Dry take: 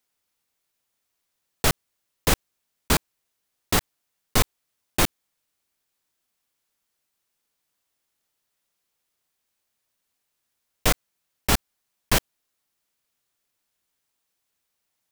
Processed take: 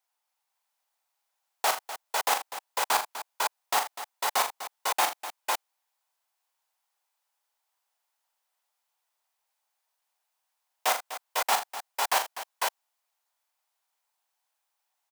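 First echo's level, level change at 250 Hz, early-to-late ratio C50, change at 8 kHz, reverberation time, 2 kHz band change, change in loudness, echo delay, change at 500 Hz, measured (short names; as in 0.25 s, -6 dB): -7.0 dB, -21.5 dB, none, -3.0 dB, none, -1.5 dB, -4.0 dB, 40 ms, -4.0 dB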